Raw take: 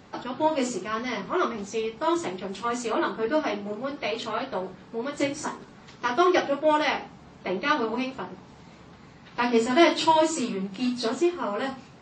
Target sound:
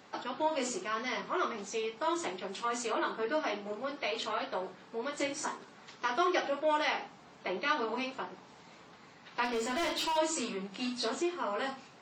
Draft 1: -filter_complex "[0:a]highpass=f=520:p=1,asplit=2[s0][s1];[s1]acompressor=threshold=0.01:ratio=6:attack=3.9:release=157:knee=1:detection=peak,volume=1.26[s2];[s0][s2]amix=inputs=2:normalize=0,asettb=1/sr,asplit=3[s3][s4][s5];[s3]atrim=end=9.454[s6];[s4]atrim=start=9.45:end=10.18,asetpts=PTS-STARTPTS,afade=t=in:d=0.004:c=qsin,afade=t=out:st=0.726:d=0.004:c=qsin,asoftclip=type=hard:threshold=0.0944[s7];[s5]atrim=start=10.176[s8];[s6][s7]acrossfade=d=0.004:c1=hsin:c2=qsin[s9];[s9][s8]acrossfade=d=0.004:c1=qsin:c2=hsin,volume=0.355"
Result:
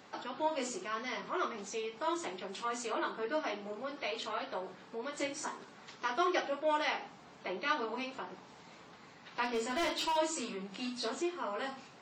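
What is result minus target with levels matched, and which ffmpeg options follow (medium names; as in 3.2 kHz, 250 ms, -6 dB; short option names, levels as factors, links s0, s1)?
compression: peak gain reduction +9.5 dB
-filter_complex "[0:a]highpass=f=520:p=1,asplit=2[s0][s1];[s1]acompressor=threshold=0.0376:ratio=6:attack=3.9:release=157:knee=1:detection=peak,volume=1.26[s2];[s0][s2]amix=inputs=2:normalize=0,asettb=1/sr,asplit=3[s3][s4][s5];[s3]atrim=end=9.454[s6];[s4]atrim=start=9.45:end=10.18,asetpts=PTS-STARTPTS,afade=t=in:d=0.004:c=qsin,afade=t=out:st=0.726:d=0.004:c=qsin,asoftclip=type=hard:threshold=0.0944[s7];[s5]atrim=start=10.176[s8];[s6][s7]acrossfade=d=0.004:c1=hsin:c2=qsin[s9];[s9][s8]acrossfade=d=0.004:c1=qsin:c2=hsin,volume=0.355"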